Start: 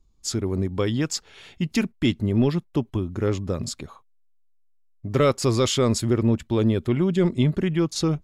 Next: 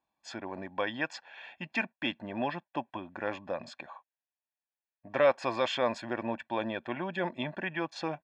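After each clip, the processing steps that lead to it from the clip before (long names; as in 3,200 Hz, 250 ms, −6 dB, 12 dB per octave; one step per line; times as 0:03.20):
Chebyshev band-pass filter 510–2,200 Hz, order 2
comb filter 1.2 ms, depth 84%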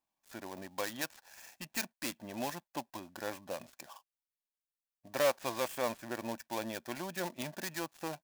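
gap after every zero crossing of 0.13 ms
high-shelf EQ 4,900 Hz +9.5 dB
level −5.5 dB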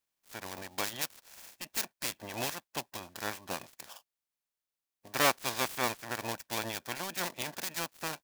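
ceiling on every frequency bin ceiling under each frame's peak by 16 dB
level +2.5 dB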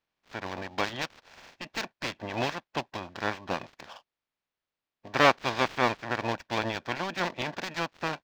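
high-frequency loss of the air 210 metres
level +8 dB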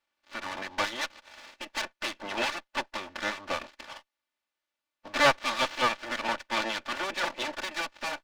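lower of the sound and its delayed copy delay 3.4 ms
mid-hump overdrive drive 10 dB, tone 5,300 Hz, clips at −11.5 dBFS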